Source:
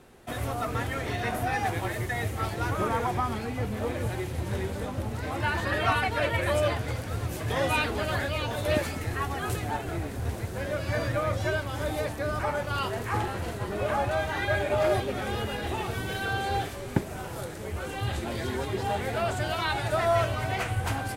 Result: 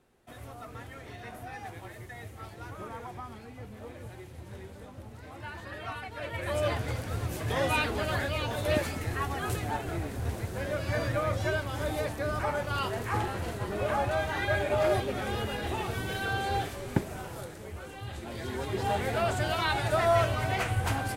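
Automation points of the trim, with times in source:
6.10 s -13.5 dB
6.74 s -1.5 dB
17.05 s -1.5 dB
18.05 s -10 dB
18.88 s 0 dB

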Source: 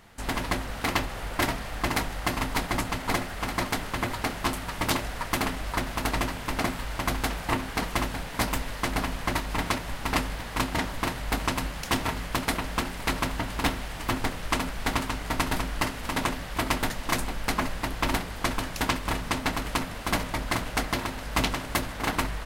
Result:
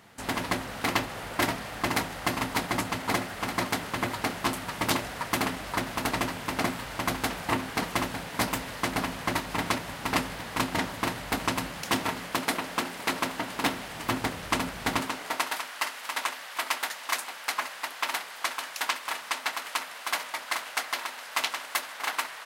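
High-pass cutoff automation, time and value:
11.60 s 110 Hz
12.54 s 230 Hz
13.46 s 230 Hz
14.29 s 93 Hz
14.91 s 93 Hz
15.14 s 290 Hz
15.59 s 890 Hz

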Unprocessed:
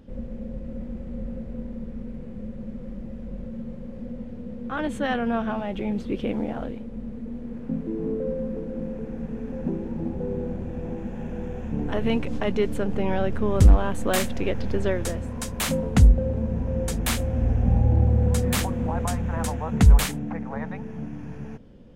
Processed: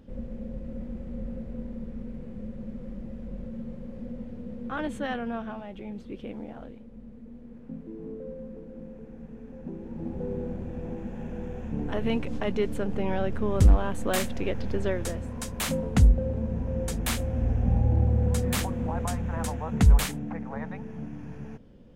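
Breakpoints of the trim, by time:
4.68 s -2.5 dB
5.73 s -11 dB
9.65 s -11 dB
10.19 s -3.5 dB

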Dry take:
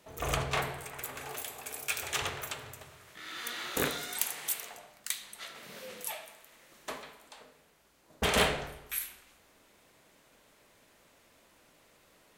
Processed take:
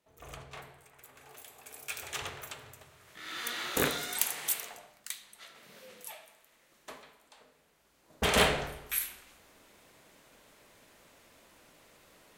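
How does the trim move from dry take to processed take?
1.01 s -15.5 dB
1.98 s -5 dB
2.93 s -5 dB
3.33 s +2 dB
4.57 s +2 dB
5.25 s -7 dB
7.25 s -7 dB
8.59 s +3 dB

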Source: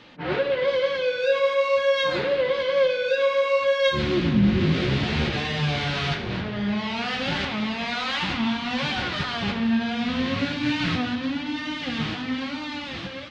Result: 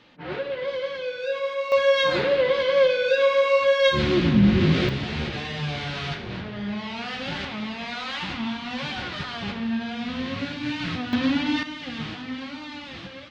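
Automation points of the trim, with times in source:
-6 dB
from 1.72 s +2 dB
from 4.89 s -4.5 dB
from 11.13 s +5 dB
from 11.63 s -5 dB

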